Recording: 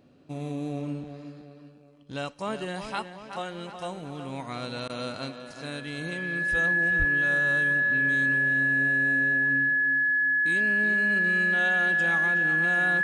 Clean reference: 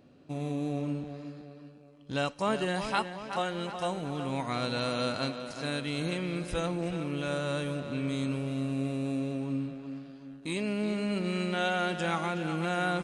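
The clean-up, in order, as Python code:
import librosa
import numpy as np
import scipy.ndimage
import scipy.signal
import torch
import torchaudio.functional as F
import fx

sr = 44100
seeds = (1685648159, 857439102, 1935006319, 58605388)

y = fx.notch(x, sr, hz=1700.0, q=30.0)
y = fx.highpass(y, sr, hz=140.0, slope=24, at=(6.98, 7.1), fade=0.02)
y = fx.fix_interpolate(y, sr, at_s=(4.88,), length_ms=14.0)
y = fx.fix_level(y, sr, at_s=2.03, step_db=3.0)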